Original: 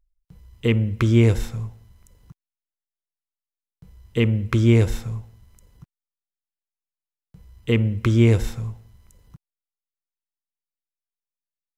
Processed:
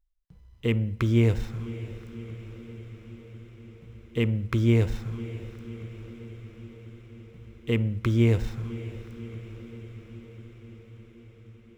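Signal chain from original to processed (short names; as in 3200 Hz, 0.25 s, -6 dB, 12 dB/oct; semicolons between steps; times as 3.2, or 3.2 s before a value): median filter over 5 samples; diffused feedback echo 0.59 s, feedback 71%, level -15 dB; gain -5.5 dB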